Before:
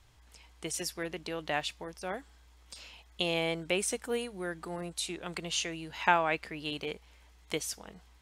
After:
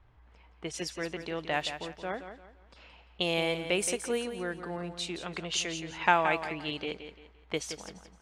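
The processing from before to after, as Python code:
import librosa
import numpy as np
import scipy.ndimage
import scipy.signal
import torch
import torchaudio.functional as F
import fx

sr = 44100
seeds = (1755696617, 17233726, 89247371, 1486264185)

y = fx.env_lowpass(x, sr, base_hz=1600.0, full_db=-27.0)
y = fx.echo_feedback(y, sr, ms=172, feedback_pct=32, wet_db=-10)
y = F.gain(torch.from_numpy(y), 1.5).numpy()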